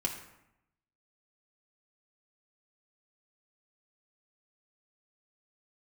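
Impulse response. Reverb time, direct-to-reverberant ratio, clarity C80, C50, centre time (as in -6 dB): 0.80 s, -1.0 dB, 8.5 dB, 6.5 dB, 28 ms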